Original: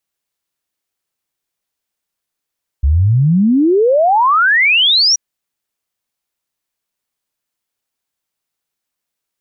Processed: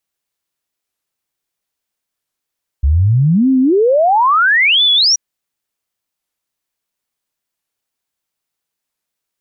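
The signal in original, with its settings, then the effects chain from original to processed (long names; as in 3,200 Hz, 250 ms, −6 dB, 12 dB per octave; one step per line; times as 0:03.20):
exponential sine sweep 65 Hz → 5,900 Hz 2.33 s −8 dBFS
wow of a warped record 45 rpm, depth 250 cents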